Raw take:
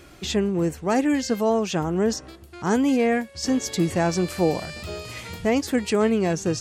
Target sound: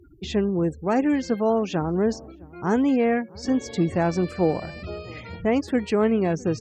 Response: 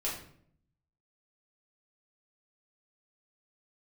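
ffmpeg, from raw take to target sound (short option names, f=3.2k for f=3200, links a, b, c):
-filter_complex "[0:a]afftfilt=real='re*gte(hypot(re,im),0.0158)':imag='im*gte(hypot(re,im),0.0158)':win_size=1024:overlap=0.75,aemphasis=mode=reproduction:type=75kf,asplit=2[a][b];[b]adelay=658,lowpass=f=910:p=1,volume=-23dB,asplit=2[c][d];[d]adelay=658,lowpass=f=910:p=1,volume=0.46,asplit=2[e][f];[f]adelay=658,lowpass=f=910:p=1,volume=0.46[g];[a][c][e][g]amix=inputs=4:normalize=0" -ar 48000 -c:a mp2 -b:a 96k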